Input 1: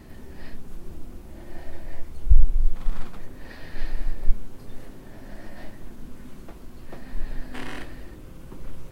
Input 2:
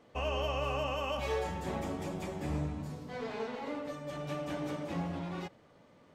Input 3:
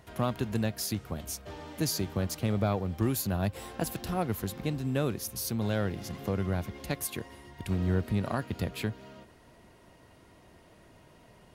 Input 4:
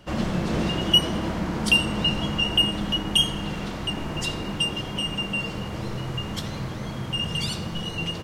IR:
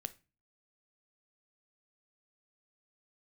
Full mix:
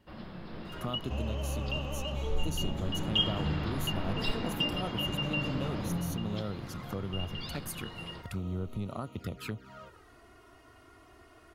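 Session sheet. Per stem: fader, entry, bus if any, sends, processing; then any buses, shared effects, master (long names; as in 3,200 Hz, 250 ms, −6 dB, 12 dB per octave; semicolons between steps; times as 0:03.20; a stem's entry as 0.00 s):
−20.0 dB, 0.00 s, no bus, no send, no processing
+3.0 dB, 0.95 s, bus A, no send, bass and treble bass +11 dB, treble +3 dB
+2.0 dB, 0.65 s, bus A, no send, parametric band 1,300 Hz +14.5 dB 0.3 octaves
0:02.58 −16.5 dB → 0:03.27 −3.5 dB → 0:05.79 −3.5 dB → 0:06.23 −11 dB, 0.00 s, no bus, no send, Chebyshev low-pass with heavy ripple 5,200 Hz, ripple 3 dB
bus A: 0.0 dB, flanger swept by the level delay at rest 3.2 ms, full sweep at −25.5 dBFS; downward compressor 2 to 1, threshold −39 dBFS, peak gain reduction 11.5 dB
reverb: not used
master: no processing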